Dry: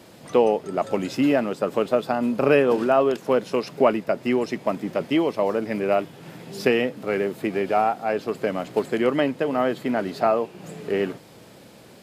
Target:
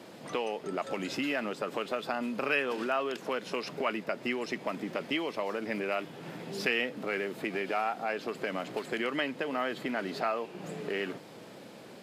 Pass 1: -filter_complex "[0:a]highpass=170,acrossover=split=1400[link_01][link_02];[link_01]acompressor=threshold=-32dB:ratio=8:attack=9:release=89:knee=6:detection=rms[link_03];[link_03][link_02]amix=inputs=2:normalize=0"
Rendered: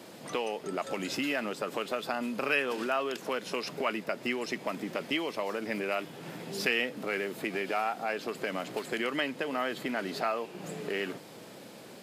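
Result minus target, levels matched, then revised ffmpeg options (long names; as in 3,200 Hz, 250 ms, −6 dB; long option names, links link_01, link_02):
8,000 Hz band +4.5 dB
-filter_complex "[0:a]highpass=170,highshelf=frequency=6100:gain=-8.5,acrossover=split=1400[link_01][link_02];[link_01]acompressor=threshold=-32dB:ratio=8:attack=9:release=89:knee=6:detection=rms[link_03];[link_03][link_02]amix=inputs=2:normalize=0"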